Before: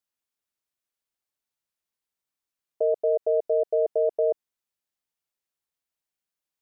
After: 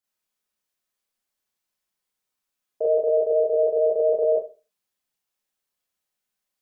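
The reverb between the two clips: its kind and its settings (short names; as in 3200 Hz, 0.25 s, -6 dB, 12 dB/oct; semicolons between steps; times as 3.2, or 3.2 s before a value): Schroeder reverb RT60 0.33 s, combs from 30 ms, DRR -6.5 dB; gain -2 dB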